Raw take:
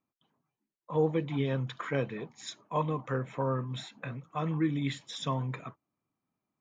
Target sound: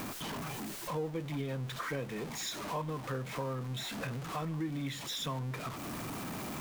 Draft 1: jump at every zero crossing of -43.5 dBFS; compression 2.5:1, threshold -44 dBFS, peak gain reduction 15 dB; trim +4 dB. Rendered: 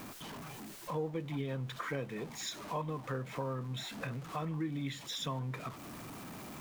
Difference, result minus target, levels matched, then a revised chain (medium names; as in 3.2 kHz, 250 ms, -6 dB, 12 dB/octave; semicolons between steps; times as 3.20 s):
jump at every zero crossing: distortion -7 dB
jump at every zero crossing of -35 dBFS; compression 2.5:1, threshold -44 dBFS, peak gain reduction 15 dB; trim +4 dB